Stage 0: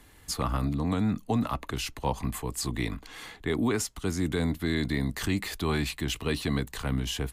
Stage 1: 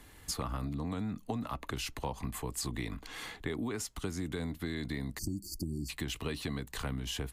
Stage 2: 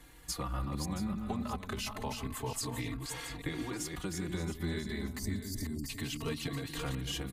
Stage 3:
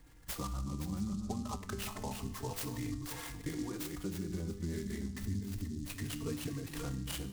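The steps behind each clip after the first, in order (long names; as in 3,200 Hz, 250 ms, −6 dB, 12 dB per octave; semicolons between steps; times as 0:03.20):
time-frequency box erased 0:05.18–0:05.89, 370–4,400 Hz; downward compressor, threshold −33 dBFS, peak gain reduction 11 dB
delay that plays each chunk backwards 285 ms, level −5 dB; single-tap delay 675 ms −11.5 dB; barber-pole flanger 3.8 ms +0.29 Hz; level +2 dB
spectral envelope exaggerated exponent 1.5; tuned comb filter 99 Hz, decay 0.71 s, harmonics all, mix 70%; short delay modulated by noise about 5,700 Hz, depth 0.062 ms; level +6.5 dB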